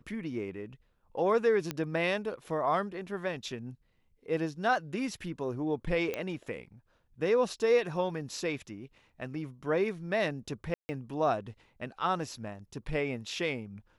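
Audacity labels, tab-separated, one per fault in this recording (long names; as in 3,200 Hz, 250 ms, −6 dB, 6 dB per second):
1.710000	1.710000	click −17 dBFS
6.140000	6.140000	click −19 dBFS
10.740000	10.890000	drop-out 150 ms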